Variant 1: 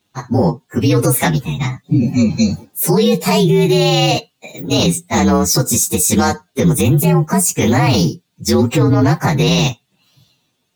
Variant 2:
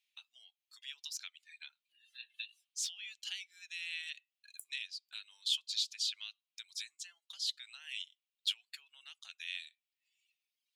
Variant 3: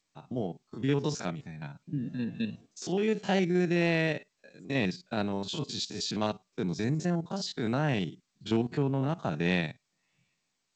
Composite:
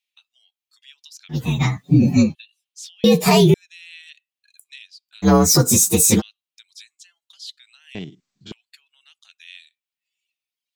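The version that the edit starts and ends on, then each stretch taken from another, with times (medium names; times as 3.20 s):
2
1.37–2.27 s: from 1, crossfade 0.16 s
3.04–3.54 s: from 1
5.25–6.19 s: from 1, crossfade 0.06 s
7.95–8.52 s: from 3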